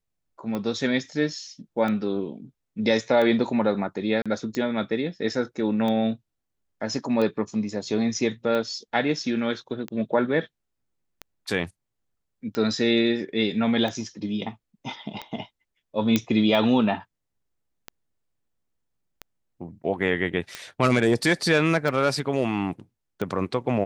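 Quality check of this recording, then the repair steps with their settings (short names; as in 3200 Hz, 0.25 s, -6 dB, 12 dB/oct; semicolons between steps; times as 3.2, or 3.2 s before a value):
tick 45 rpm -17 dBFS
4.22–4.26 gap 36 ms
16.16 pop -7 dBFS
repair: de-click; interpolate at 4.22, 36 ms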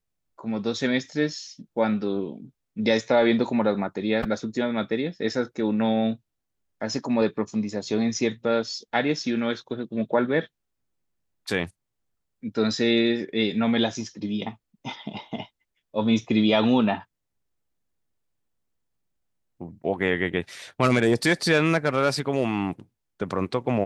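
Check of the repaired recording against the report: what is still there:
none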